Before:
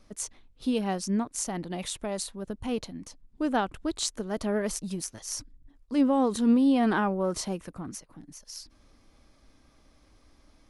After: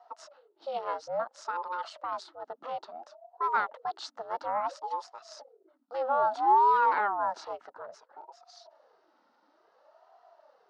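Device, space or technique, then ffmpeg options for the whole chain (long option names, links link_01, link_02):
voice changer toy: -af "aeval=exprs='val(0)*sin(2*PI*480*n/s+480*0.5/0.59*sin(2*PI*0.59*n/s))':channel_layout=same,highpass=590,equalizer=frequency=640:width_type=q:width=4:gain=6,equalizer=frequency=900:width_type=q:width=4:gain=8,equalizer=frequency=1300:width_type=q:width=4:gain=9,equalizer=frequency=2400:width_type=q:width=4:gain=-9,equalizer=frequency=3400:width_type=q:width=4:gain=-5,lowpass=frequency=4500:width=0.5412,lowpass=frequency=4500:width=1.3066,volume=-2dB"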